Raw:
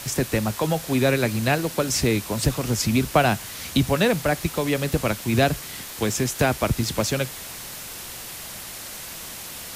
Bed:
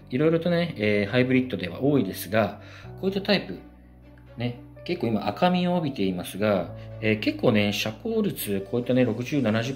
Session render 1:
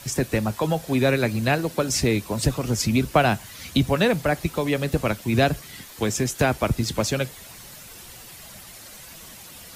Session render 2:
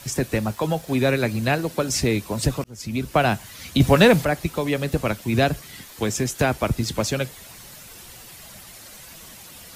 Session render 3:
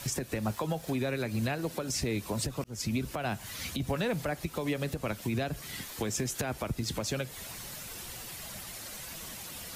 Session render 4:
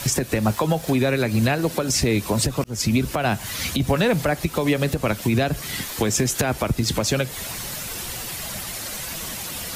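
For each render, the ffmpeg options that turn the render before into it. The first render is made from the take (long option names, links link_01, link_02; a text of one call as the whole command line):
ffmpeg -i in.wav -af "afftdn=noise_reduction=9:noise_floor=-37" out.wav
ffmpeg -i in.wav -filter_complex "[0:a]asettb=1/sr,asplit=3[link_01][link_02][link_03];[link_01]atrim=end=0.384[link_04];[link_02]atrim=start=0.38:end=0.99,asetpts=PTS-STARTPTS,afade=type=in:duration=0.004:curve=qsin,afade=type=out:start_time=0.606:duration=0.004:curve=qsin,aeval=exprs='sgn(val(0))*max(abs(val(0))-0.00211,0)':channel_layout=same[link_05];[link_03]atrim=start=0.986[link_06];[link_04][link_05]acrossfade=duration=0.004:curve1=hsin:curve2=qsin[link_07];[link_07][link_06]acrossfade=duration=0.004:curve1=qsin:curve2=hsin,asettb=1/sr,asplit=3[link_08][link_09][link_10];[link_08]atrim=end=3.804[link_11];[link_09]atrim=start=3.8:end=4.25,asetpts=PTS-STARTPTS,afade=type=in:duration=0.004:curve=qsin,afade=type=out:start_time=0.446:duration=0.004:curve=qsin,acontrast=83[link_12];[link_10]atrim=start=4.246[link_13];[link_11][link_12]acrossfade=duration=0.004:curve1=hsin:curve2=qsin[link_14];[link_14][link_13]acrossfade=duration=0.004:curve1=qsin:curve2=hsin,asplit=2[link_15][link_16];[link_15]atrim=end=2.64,asetpts=PTS-STARTPTS,afade=type=out:start_time=2.636:duration=0.004:curve=hsin[link_17];[link_16]atrim=start=2.64,asetpts=PTS-STARTPTS,afade=type=in:duration=0.6[link_18];[link_17][link_18]concat=n=2:v=0:a=1" out.wav
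ffmpeg -i in.wav -af "acompressor=threshold=-25dB:ratio=6,alimiter=limit=-22dB:level=0:latency=1:release=186" out.wav
ffmpeg -i in.wav -af "volume=11.5dB" out.wav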